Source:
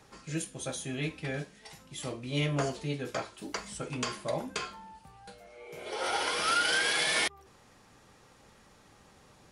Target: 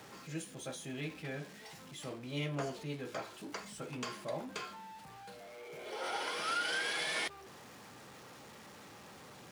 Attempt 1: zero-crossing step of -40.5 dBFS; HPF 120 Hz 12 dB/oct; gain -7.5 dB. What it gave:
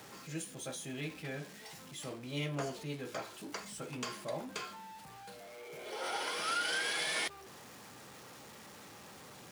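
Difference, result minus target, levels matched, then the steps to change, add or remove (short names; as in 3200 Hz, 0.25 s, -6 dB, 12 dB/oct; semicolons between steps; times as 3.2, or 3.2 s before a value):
8000 Hz band +3.0 dB
add after HPF: high shelf 6100 Hz -6 dB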